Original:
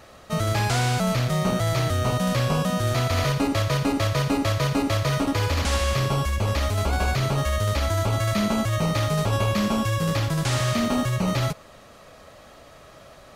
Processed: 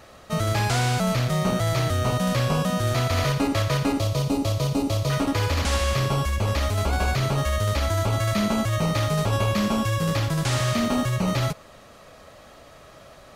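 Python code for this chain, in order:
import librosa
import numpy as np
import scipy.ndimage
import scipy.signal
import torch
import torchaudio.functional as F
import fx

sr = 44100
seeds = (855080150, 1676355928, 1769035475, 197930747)

y = fx.peak_eq(x, sr, hz=1700.0, db=-14.5, octaves=1.0, at=(3.99, 5.1))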